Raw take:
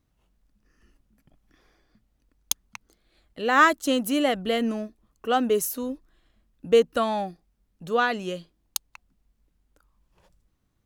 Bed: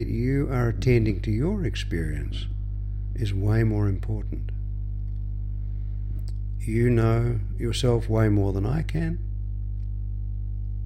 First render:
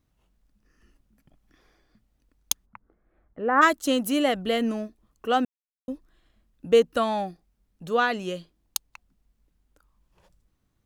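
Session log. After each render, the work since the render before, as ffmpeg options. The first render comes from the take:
-filter_complex "[0:a]asplit=3[a][b][c];[a]afade=t=out:st=2.65:d=0.02[d];[b]lowpass=f=1.6k:w=0.5412,lowpass=f=1.6k:w=1.3066,afade=t=in:st=2.65:d=0.02,afade=t=out:st=3.61:d=0.02[e];[c]afade=t=in:st=3.61:d=0.02[f];[d][e][f]amix=inputs=3:normalize=0,asplit=3[g][h][i];[g]atrim=end=5.45,asetpts=PTS-STARTPTS,afade=t=out:st=5.446:d=0.004:c=hsin[j];[h]atrim=start=5.45:end=5.88,asetpts=PTS-STARTPTS,volume=0[k];[i]atrim=start=5.88,asetpts=PTS-STARTPTS,afade=t=in:d=0.004:c=hsin[l];[j][k][l]concat=n=3:v=0:a=1"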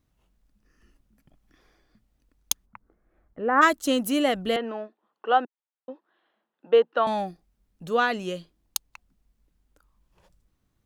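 -filter_complex "[0:a]asettb=1/sr,asplit=3[a][b][c];[a]atrim=end=4.564[d];[b]atrim=start=4.56:end=7.07,asetpts=PTS-STARTPTS,afade=t=in:d=0.004:c=qsin,afade=t=out:st=2.506:d=0.004:c=qsin,highpass=f=280:w=0.5412,highpass=f=280:w=1.3066,equalizer=f=280:t=q:w=4:g=-9,equalizer=f=870:t=q:w=4:g=8,equalizer=f=1.5k:t=q:w=4:g=3,equalizer=f=2.3k:t=q:w=4:g=-6,lowpass=f=3.3k:w=0.5412,lowpass=f=3.3k:w=1.3066[e];[c]atrim=start=7.066[f];[d][e]acrossfade=d=0.004:c1=hsin:c2=qsin[g];[g][f]acrossfade=d=0.004:c1=qsin:c2=hsin"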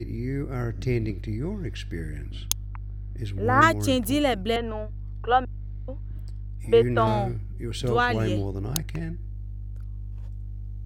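-filter_complex "[1:a]volume=-5.5dB[a];[0:a][a]amix=inputs=2:normalize=0"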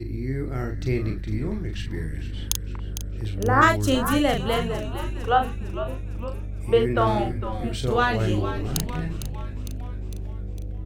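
-filter_complex "[0:a]asplit=2[a][b];[b]adelay=38,volume=-5.5dB[c];[a][c]amix=inputs=2:normalize=0,asplit=2[d][e];[e]asplit=7[f][g][h][i][j][k][l];[f]adelay=455,afreqshift=-120,volume=-11dB[m];[g]adelay=910,afreqshift=-240,volume=-15.7dB[n];[h]adelay=1365,afreqshift=-360,volume=-20.5dB[o];[i]adelay=1820,afreqshift=-480,volume=-25.2dB[p];[j]adelay=2275,afreqshift=-600,volume=-29.9dB[q];[k]adelay=2730,afreqshift=-720,volume=-34.7dB[r];[l]adelay=3185,afreqshift=-840,volume=-39.4dB[s];[m][n][o][p][q][r][s]amix=inputs=7:normalize=0[t];[d][t]amix=inputs=2:normalize=0"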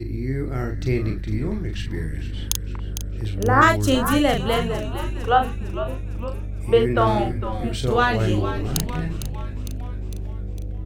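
-af "volume=2.5dB,alimiter=limit=-3dB:level=0:latency=1"

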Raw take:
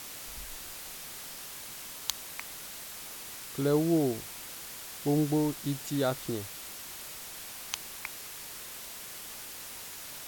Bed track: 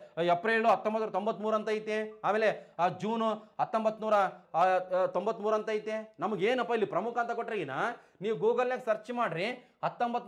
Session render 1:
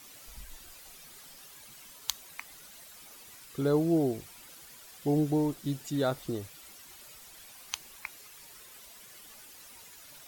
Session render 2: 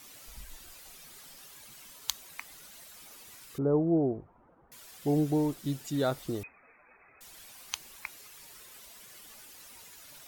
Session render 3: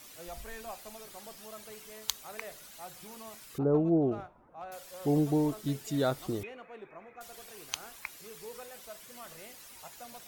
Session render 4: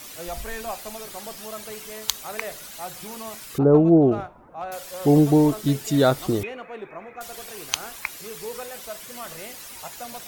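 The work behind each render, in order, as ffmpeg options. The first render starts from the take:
-af "afftdn=nr=11:nf=-44"
-filter_complex "[0:a]asettb=1/sr,asplit=3[a][b][c];[a]atrim=end=3.584[d];[b]atrim=start=3.58:end=4.72,asetpts=PTS-STARTPTS,afade=t=in:d=0.004:c=qsin,afade=t=out:st=1.136:d=0.004:c=qsin,lowpass=f=1.1k:w=0.5412,lowpass=f=1.1k:w=1.3066[e];[c]atrim=start=4.716[f];[d][e]acrossfade=d=0.004:c1=hsin:c2=qsin[g];[g][f]acrossfade=d=0.004:c1=qsin:c2=hsin,asettb=1/sr,asplit=3[h][i][j];[h]atrim=end=6.434[k];[i]atrim=start=6.43:end=7.21,asetpts=PTS-STARTPTS,afade=t=in:d=0.004:c=qsin,afade=t=out:st=0.776:d=0.004:c=qsin,lowpass=f=2.2k:t=q:w=0.5098,lowpass=f=2.2k:t=q:w=0.6013,lowpass=f=2.2k:t=q:w=0.9,lowpass=f=2.2k:t=q:w=2.563,afreqshift=-2600[l];[j]atrim=start=7.206[m];[k][l]acrossfade=d=0.004:c1=hsin:c2=qsin[n];[n][m]acrossfade=d=0.004:c1=qsin:c2=hsin"
-filter_complex "[1:a]volume=-18.5dB[a];[0:a][a]amix=inputs=2:normalize=0"
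-af "volume=11dB,alimiter=limit=-1dB:level=0:latency=1"

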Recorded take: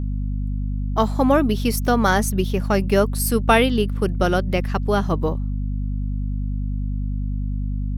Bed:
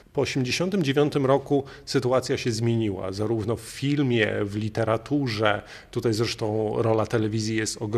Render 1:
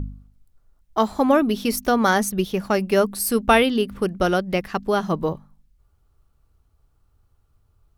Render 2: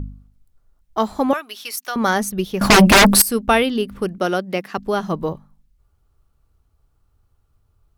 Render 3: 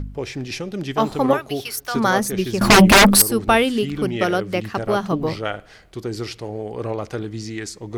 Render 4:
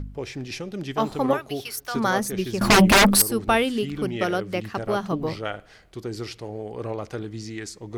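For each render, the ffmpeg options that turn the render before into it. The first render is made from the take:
-af "bandreject=f=50:t=h:w=4,bandreject=f=100:t=h:w=4,bandreject=f=150:t=h:w=4,bandreject=f=200:t=h:w=4,bandreject=f=250:t=h:w=4"
-filter_complex "[0:a]asettb=1/sr,asplit=3[a][b][c];[a]atrim=end=1.334[d];[b]atrim=start=1.33:end=1.96,asetpts=PTS-STARTPTS,afade=t=in:d=0.004:c=qsin,afade=t=out:st=0.626:d=0.004:c=qsin,highpass=1.2k[e];[c]atrim=start=1.956[f];[d][e]acrossfade=d=0.004:c1=hsin:c2=qsin[g];[g][f]acrossfade=d=0.004:c1=qsin:c2=hsin,asettb=1/sr,asplit=3[h][i][j];[h]atrim=end=2.614[k];[i]atrim=start=2.61:end=3.22,asetpts=PTS-STARTPTS,afade=t=in:d=0.004:c=qsin,afade=t=out:st=0.606:d=0.004:c=qsin,aeval=exprs='0.501*sin(PI/2*7.08*val(0)/0.501)':c=same[l];[j]atrim=start=3.216[m];[k][l]acrossfade=d=0.004:c1=hsin:c2=qsin[n];[n][m]acrossfade=d=0.004:c1=qsin:c2=hsin,asettb=1/sr,asplit=3[o][p][q];[o]atrim=end=4.184[r];[p]atrim=start=4.18:end=4.78,asetpts=PTS-STARTPTS,afade=t=in:d=0.004:c=qsin,afade=t=out:st=0.596:d=0.004:c=qsin,highpass=f=180:w=0.5412,highpass=f=180:w=1.3066[s];[q]atrim=start=4.776[t];[r][s]acrossfade=d=0.004:c1=hsin:c2=qsin[u];[u][t]acrossfade=d=0.004:c1=qsin:c2=hsin"
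-filter_complex "[1:a]volume=-4dB[a];[0:a][a]amix=inputs=2:normalize=0"
-af "volume=-4.5dB"

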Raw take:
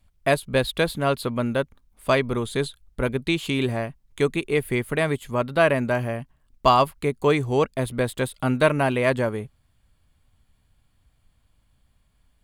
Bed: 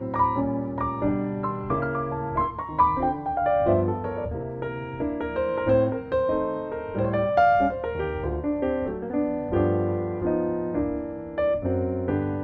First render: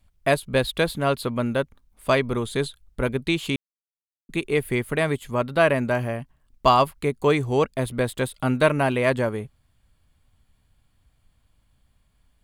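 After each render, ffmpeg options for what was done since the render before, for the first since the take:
-filter_complex "[0:a]asplit=3[a][b][c];[a]atrim=end=3.56,asetpts=PTS-STARTPTS,afade=t=out:st=3.556:d=0.004:c=hsin[d];[b]atrim=start=3.56:end=4.29,asetpts=PTS-STARTPTS,volume=0[e];[c]atrim=start=4.29,asetpts=PTS-STARTPTS,afade=t=in:d=0.004:c=hsin[f];[d][e][f]concat=n=3:v=0:a=1"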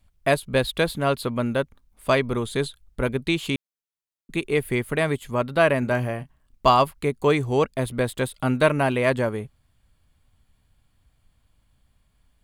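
-filter_complex "[0:a]asettb=1/sr,asplit=3[a][b][c];[a]atrim=end=5.794[d];[b]atrim=start=5.79:end=6.7,asetpts=PTS-STARTPTS,afade=t=in:d=0.004:c=qsin,afade=t=out:st=0.906:d=0.004:c=qsin,asplit=2[e][f];[f]adelay=32,volume=-11.5dB[g];[e][g]amix=inputs=2:normalize=0,atrim=end_sample=40131[h];[c]atrim=start=6.696[i];[d][h]acrossfade=d=0.004:c1=hsin:c2=qsin[j];[j][i]acrossfade=d=0.004:c1=qsin:c2=hsin"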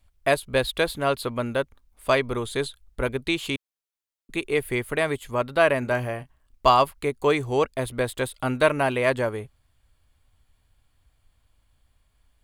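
-af "equalizer=f=180:w=1.4:g=-9"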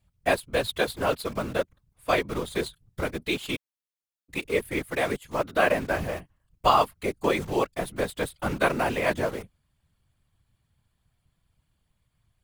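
-filter_complex "[0:a]asplit=2[a][b];[b]acrusher=bits=4:mix=0:aa=0.000001,volume=-6dB[c];[a][c]amix=inputs=2:normalize=0,afftfilt=real='hypot(re,im)*cos(2*PI*random(0))':imag='hypot(re,im)*sin(2*PI*random(1))':win_size=512:overlap=0.75"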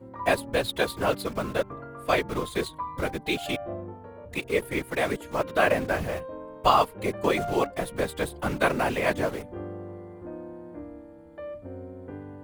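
-filter_complex "[1:a]volume=-14.5dB[a];[0:a][a]amix=inputs=2:normalize=0"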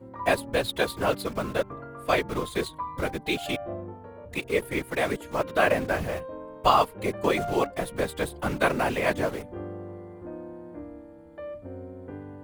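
-af anull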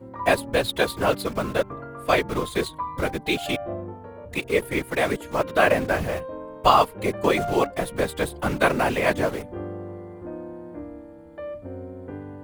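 -af "volume=3.5dB"

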